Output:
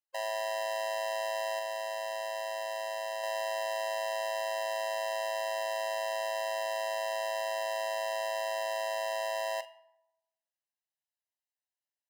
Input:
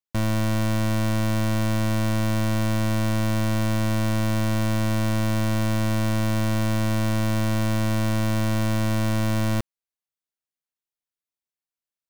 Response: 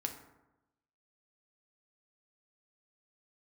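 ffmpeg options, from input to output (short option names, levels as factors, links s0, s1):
-filter_complex "[0:a]asettb=1/sr,asplit=3[s0][s1][s2];[s0]atrim=end=1.594[s3];[s1]atrim=start=1.59:end=3.24,asetpts=PTS-STARTPTS,afade=t=in:d=0.004:c=qsin,afade=t=out:st=1.646:d=0.004:c=qsin,aeval=exprs='0.0841*sin(PI/2*1.58*val(0)/0.0841)':c=same[s4];[s2]atrim=start=3.236[s5];[s3][s4]acrossfade=d=0.004:c1=hsin:c2=qsin[s6];[s6][s5]acrossfade=d=0.004:c1=qsin:c2=hsin,highshelf=f=7800:g=-8.5,bandreject=f=166.7:t=h:w=4,bandreject=f=333.4:t=h:w=4,bandreject=f=500.1:t=h:w=4,bandreject=f=666.8:t=h:w=4,bandreject=f=833.5:t=h:w=4,bandreject=f=1000.2:t=h:w=4,bandreject=f=1166.9:t=h:w=4,bandreject=f=1333.6:t=h:w=4,bandreject=f=1500.3:t=h:w=4,bandreject=f=1667:t=h:w=4,bandreject=f=1833.7:t=h:w=4,bandreject=f=2000.4:t=h:w=4,bandreject=f=2167.1:t=h:w=4,bandreject=f=2333.8:t=h:w=4,bandreject=f=2500.5:t=h:w=4,bandreject=f=2667.2:t=h:w=4,bandreject=f=2833.9:t=h:w=4,bandreject=f=3000.6:t=h:w=4,bandreject=f=3167.3:t=h:w=4,bandreject=f=3334:t=h:w=4,bandreject=f=3500.7:t=h:w=4,bandreject=f=3667.4:t=h:w=4,bandreject=f=3834.1:t=h:w=4,bandreject=f=4000.8:t=h:w=4,bandreject=f=4167.5:t=h:w=4,bandreject=f=4334.2:t=h:w=4,bandreject=f=4500.9:t=h:w=4,bandreject=f=4667.6:t=h:w=4,bandreject=f=4834.3:t=h:w=4,bandreject=f=5001:t=h:w=4,bandreject=f=5167.7:t=h:w=4,asplit=2[s7][s8];[1:a]atrim=start_sample=2205,adelay=43[s9];[s8][s9]afir=irnorm=-1:irlink=0,volume=0.2[s10];[s7][s10]amix=inputs=2:normalize=0,afftfilt=real='re*eq(mod(floor(b*sr/1024/530),2),1)':imag='im*eq(mod(floor(b*sr/1024/530),2),1)':win_size=1024:overlap=0.75"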